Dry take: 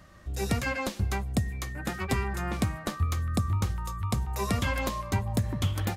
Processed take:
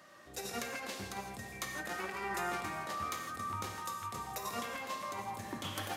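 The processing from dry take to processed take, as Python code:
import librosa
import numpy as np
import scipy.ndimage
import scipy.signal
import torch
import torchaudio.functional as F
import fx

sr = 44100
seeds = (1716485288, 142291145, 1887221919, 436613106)

y = scipy.signal.sosfilt(scipy.signal.butter(2, 350.0, 'highpass', fs=sr, output='sos'), x)
y = fx.over_compress(y, sr, threshold_db=-36.0, ratio=-0.5)
y = fx.echo_feedback(y, sr, ms=275, feedback_pct=54, wet_db=-14.0)
y = fx.rev_gated(y, sr, seeds[0], gate_ms=190, shape='flat', drr_db=2.5)
y = y * 10.0 ** (-4.0 / 20.0)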